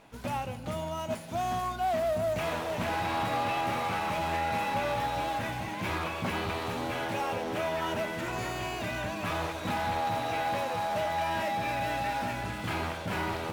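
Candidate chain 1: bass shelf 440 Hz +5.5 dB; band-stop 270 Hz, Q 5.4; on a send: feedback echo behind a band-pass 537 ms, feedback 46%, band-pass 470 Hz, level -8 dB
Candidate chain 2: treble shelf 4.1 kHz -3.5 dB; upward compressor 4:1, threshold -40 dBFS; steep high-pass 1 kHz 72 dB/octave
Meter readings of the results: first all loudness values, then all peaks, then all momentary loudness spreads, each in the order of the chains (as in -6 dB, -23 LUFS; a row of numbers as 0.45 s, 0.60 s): -29.5 LUFS, -37.5 LUFS; -16.0 dBFS, -24.0 dBFS; 4 LU, 7 LU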